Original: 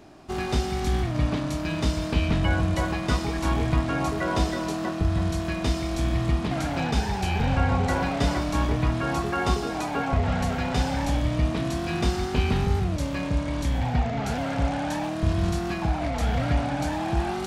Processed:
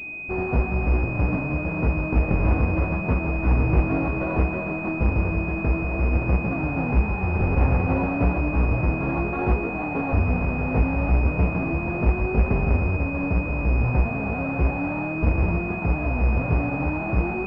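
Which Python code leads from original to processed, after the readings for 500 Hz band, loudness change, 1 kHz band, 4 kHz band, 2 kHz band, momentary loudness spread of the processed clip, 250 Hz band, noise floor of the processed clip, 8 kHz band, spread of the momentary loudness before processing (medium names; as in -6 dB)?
+1.5 dB, +2.5 dB, -1.5 dB, under -20 dB, +4.0 dB, 4 LU, +1.5 dB, -28 dBFS, under -30 dB, 3 LU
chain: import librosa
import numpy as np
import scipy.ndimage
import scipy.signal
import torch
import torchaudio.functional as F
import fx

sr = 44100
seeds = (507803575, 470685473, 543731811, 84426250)

y = fx.halfwave_hold(x, sr)
y = fx.chorus_voices(y, sr, voices=2, hz=0.65, base_ms=15, depth_ms=4.3, mix_pct=35)
y = fx.pwm(y, sr, carrier_hz=2500.0)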